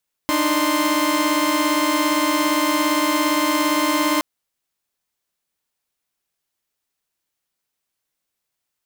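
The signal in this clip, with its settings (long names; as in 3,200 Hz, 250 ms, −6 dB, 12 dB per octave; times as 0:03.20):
held notes D4/D#4/C6 saw, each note −19 dBFS 3.92 s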